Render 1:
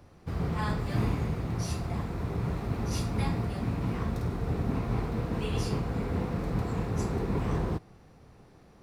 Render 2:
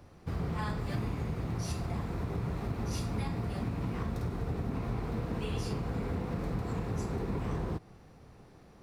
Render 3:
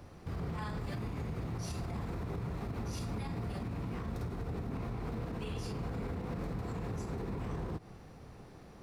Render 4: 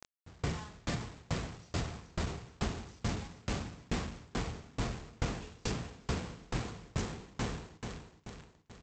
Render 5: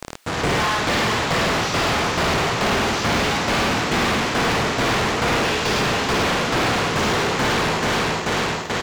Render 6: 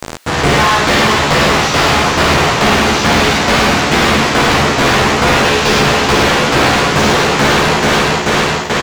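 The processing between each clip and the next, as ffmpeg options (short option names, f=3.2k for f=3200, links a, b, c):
-af "acompressor=threshold=-30dB:ratio=6"
-af "alimiter=level_in=9.5dB:limit=-24dB:level=0:latency=1:release=92,volume=-9.5dB,volume=3dB"
-af "aresample=16000,acrusher=bits=6:mix=0:aa=0.000001,aresample=44100,aecho=1:1:422|844|1266|1688|2110|2532:0.447|0.219|0.107|0.0526|0.0258|0.0126,aeval=exprs='val(0)*pow(10,-32*if(lt(mod(2.3*n/s,1),2*abs(2.3)/1000),1-mod(2.3*n/s,1)/(2*abs(2.3)/1000),(mod(2.3*n/s,1)-2*abs(2.3)/1000)/(1-2*abs(2.3)/1000))/20)':c=same,volume=7dB"
-filter_complex "[0:a]aecho=1:1:55.39|105:0.631|0.794,asplit=2[a][b];[b]highpass=f=720:p=1,volume=42dB,asoftclip=type=tanh:threshold=-18.5dB[c];[a][c]amix=inputs=2:normalize=0,lowpass=f=5.2k:p=1,volume=-6dB,acrossover=split=5500[d][e];[e]acompressor=threshold=-42dB:ratio=4:attack=1:release=60[f];[d][f]amix=inputs=2:normalize=0,volume=6dB"
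-filter_complex "[0:a]asplit=2[a][b];[b]adelay=14,volume=-5dB[c];[a][c]amix=inputs=2:normalize=0,volume=8dB"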